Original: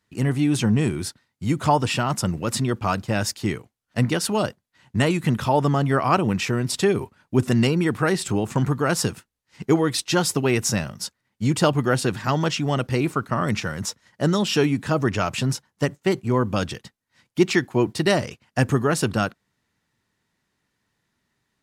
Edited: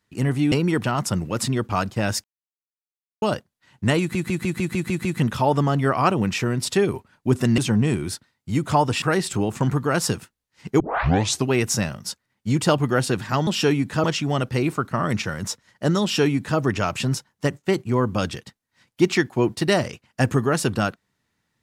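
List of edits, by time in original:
0.52–1.96 s: swap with 7.65–7.97 s
3.36–4.34 s: mute
5.12 s: stutter 0.15 s, 8 plays
9.75 s: tape start 0.67 s
14.40–14.97 s: copy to 12.42 s

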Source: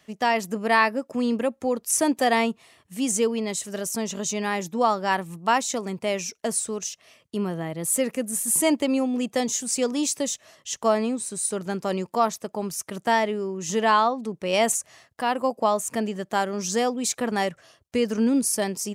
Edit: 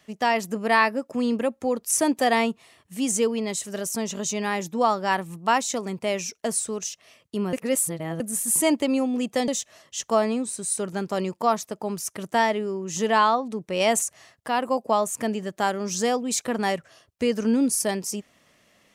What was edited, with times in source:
7.53–8.20 s: reverse
9.48–10.21 s: delete

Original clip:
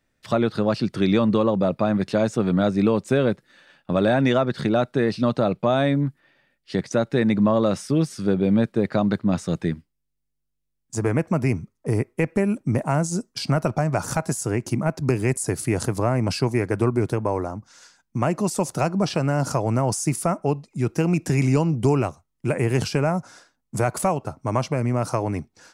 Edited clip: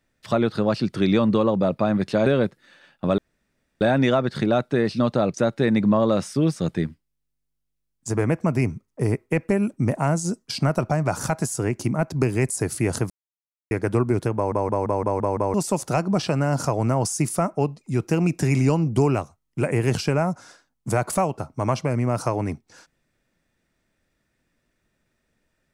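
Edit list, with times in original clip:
2.26–3.12 s: delete
4.04 s: insert room tone 0.63 s
5.57–6.88 s: delete
8.10–9.43 s: delete
15.97–16.58 s: mute
17.22 s: stutter in place 0.17 s, 7 plays

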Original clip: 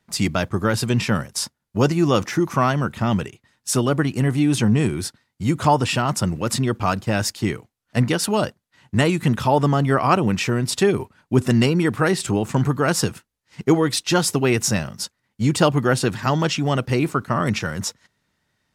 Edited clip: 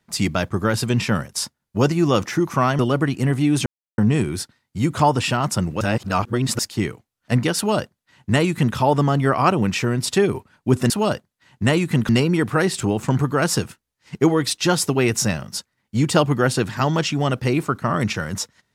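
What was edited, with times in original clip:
2.79–3.76 s: delete
4.63 s: insert silence 0.32 s
6.46–7.24 s: reverse
8.22–9.41 s: copy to 11.55 s

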